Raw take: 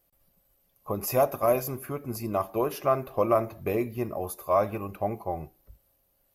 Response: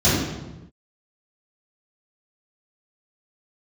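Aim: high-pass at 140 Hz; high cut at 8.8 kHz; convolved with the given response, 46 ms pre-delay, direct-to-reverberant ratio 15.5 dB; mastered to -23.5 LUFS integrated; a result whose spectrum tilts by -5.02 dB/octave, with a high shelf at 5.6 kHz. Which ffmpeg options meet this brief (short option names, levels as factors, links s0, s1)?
-filter_complex "[0:a]highpass=140,lowpass=8800,highshelf=f=5600:g=9,asplit=2[s0][s1];[1:a]atrim=start_sample=2205,adelay=46[s2];[s1][s2]afir=irnorm=-1:irlink=0,volume=0.0158[s3];[s0][s3]amix=inputs=2:normalize=0,volume=1.68"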